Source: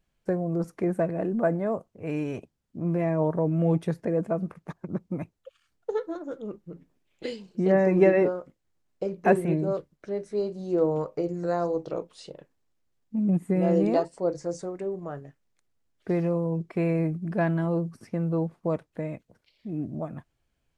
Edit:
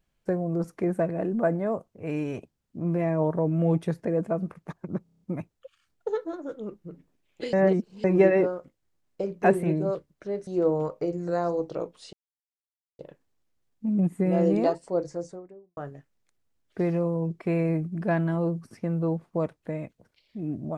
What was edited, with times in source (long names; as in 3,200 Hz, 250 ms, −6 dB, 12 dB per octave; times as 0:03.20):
0:05.03: stutter 0.03 s, 7 plays
0:07.35–0:07.86: reverse
0:10.29–0:10.63: remove
0:12.29: splice in silence 0.86 s
0:14.24–0:15.07: fade out and dull